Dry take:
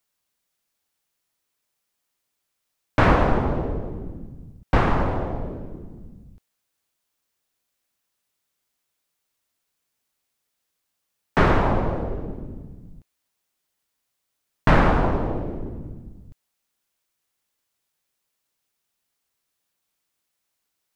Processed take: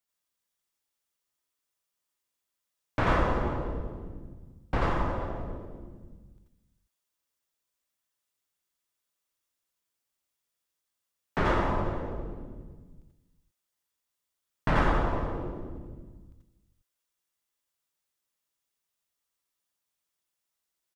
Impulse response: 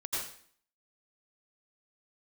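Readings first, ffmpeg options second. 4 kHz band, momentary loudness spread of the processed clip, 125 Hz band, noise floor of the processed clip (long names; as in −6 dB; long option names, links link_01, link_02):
−6.5 dB, 21 LU, −8.5 dB, −85 dBFS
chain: -filter_complex "[0:a]asplit=2[link_01][link_02];[link_02]adelay=402.3,volume=-17dB,highshelf=frequency=4000:gain=-9.05[link_03];[link_01][link_03]amix=inputs=2:normalize=0[link_04];[1:a]atrim=start_sample=2205,afade=type=out:start_time=0.14:duration=0.01,atrim=end_sample=6615[link_05];[link_04][link_05]afir=irnorm=-1:irlink=0,volume=-6dB"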